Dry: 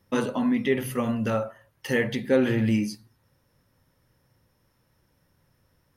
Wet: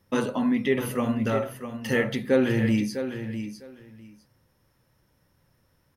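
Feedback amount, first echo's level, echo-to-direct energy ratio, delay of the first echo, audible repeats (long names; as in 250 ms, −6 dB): 17%, −9.5 dB, −9.5 dB, 653 ms, 2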